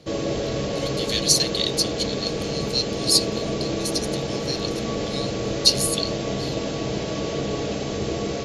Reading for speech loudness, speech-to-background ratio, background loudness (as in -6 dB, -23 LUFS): -23.0 LUFS, 4.0 dB, -27.0 LUFS